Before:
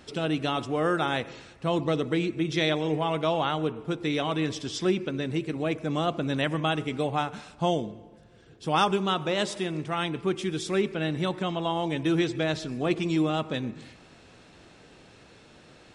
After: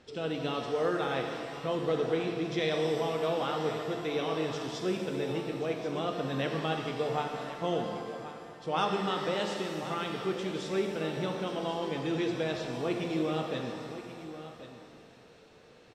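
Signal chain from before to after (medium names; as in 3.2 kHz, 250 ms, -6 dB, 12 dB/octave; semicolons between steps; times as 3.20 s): low-pass 6.6 kHz 12 dB/octave; peaking EQ 470 Hz +9.5 dB 0.24 oct; hum notches 50/100/150 Hz; on a send: delay 1083 ms -13 dB; on the sum: pitch-shifted reverb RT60 2.1 s, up +7 st, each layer -8 dB, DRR 2.5 dB; trim -8 dB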